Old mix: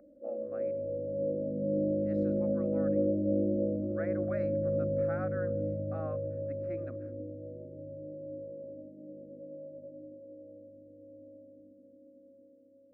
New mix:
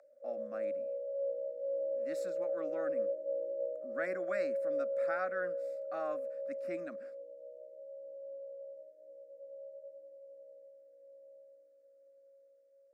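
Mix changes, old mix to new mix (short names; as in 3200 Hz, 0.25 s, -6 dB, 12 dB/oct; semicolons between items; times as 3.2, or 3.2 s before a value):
background: add steep high-pass 580 Hz 36 dB/oct; master: remove tape spacing loss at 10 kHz 39 dB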